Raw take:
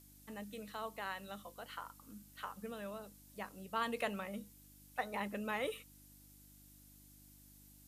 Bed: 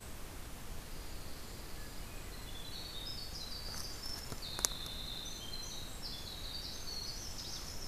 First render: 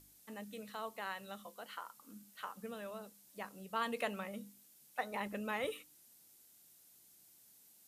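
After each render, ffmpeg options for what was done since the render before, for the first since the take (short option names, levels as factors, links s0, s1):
-af "bandreject=f=50:t=h:w=4,bandreject=f=100:t=h:w=4,bandreject=f=150:t=h:w=4,bandreject=f=200:t=h:w=4,bandreject=f=250:t=h:w=4,bandreject=f=300:t=h:w=4"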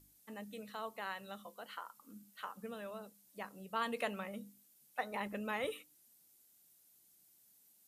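-af "afftdn=nr=6:nf=-65"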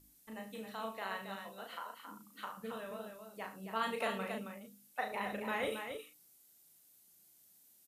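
-filter_complex "[0:a]asplit=2[s0][s1];[s1]adelay=36,volume=0.631[s2];[s0][s2]amix=inputs=2:normalize=0,asplit=2[s3][s4];[s4]aecho=0:1:72.89|271.1:0.251|0.447[s5];[s3][s5]amix=inputs=2:normalize=0"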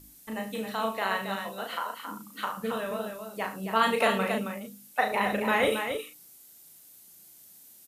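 -af "volume=3.98"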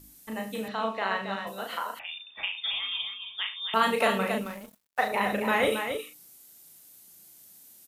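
-filter_complex "[0:a]asettb=1/sr,asplit=3[s0][s1][s2];[s0]atrim=end=0.684[s3];[s1]atrim=start=0.68:end=1.47,asetpts=PTS-STARTPTS,afade=t=in:d=0.004:c=qsin,afade=t=out:st=0.786:d=0.004:c=qsin,highpass=120,lowpass=4500[s4];[s2]atrim=start=1.466[s5];[s3][s4]acrossfade=d=0.004:c1=hsin:c2=qsin[s6];[s6][s5]acrossfade=d=0.004:c1=qsin:c2=hsin,asettb=1/sr,asplit=3[s7][s8][s9];[s7]atrim=end=1.994[s10];[s8]atrim=start=1.99:end=3.74,asetpts=PTS-STARTPTS,afade=t=in:d=0.004:c=qsin,afade=t=out:st=1.746:d=0.004:c=qsin,lowpass=f=3200:t=q:w=0.5098,lowpass=f=3200:t=q:w=0.6013,lowpass=f=3200:t=q:w=0.9,lowpass=f=3200:t=q:w=2.563,afreqshift=-3800[s11];[s9]atrim=start=3.736[s12];[s10][s11]acrossfade=d=0.004:c1=hsin:c2=qsin[s13];[s13][s12]acrossfade=d=0.004:c1=qsin:c2=hsin,asettb=1/sr,asplit=3[s14][s15][s16];[s14]atrim=end=4.414[s17];[s15]atrim=start=4.41:end=5.08,asetpts=PTS-STARTPTS,afade=t=in:d=0.004:c=qsin,afade=t=out:st=0.666:d=0.004:c=qsin,aeval=exprs='sgn(val(0))*max(abs(val(0))-0.00596,0)':c=same[s18];[s16]atrim=start=5.076[s19];[s17][s18]acrossfade=d=0.004:c1=hsin:c2=qsin[s20];[s20][s19]acrossfade=d=0.004:c1=qsin:c2=hsin"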